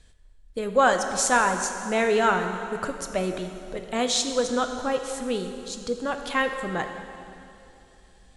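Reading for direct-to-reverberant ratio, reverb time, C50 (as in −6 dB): 5.5 dB, 3.0 s, 7.0 dB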